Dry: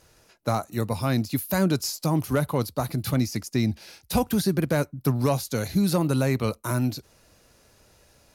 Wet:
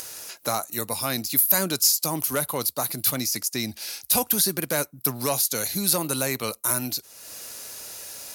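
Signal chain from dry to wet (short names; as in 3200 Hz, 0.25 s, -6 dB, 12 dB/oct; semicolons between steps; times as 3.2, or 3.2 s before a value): RIAA curve recording; upward compressor, threshold -26 dBFS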